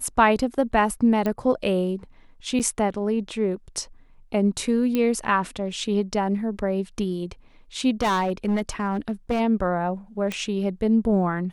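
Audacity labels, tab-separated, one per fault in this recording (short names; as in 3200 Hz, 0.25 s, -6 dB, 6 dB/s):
1.260000	1.260000	pop -14 dBFS
2.590000	2.600000	gap 7.8 ms
4.950000	4.950000	pop -12 dBFS
8.010000	9.410000	clipped -18.5 dBFS
10.320000	10.320000	pop -15 dBFS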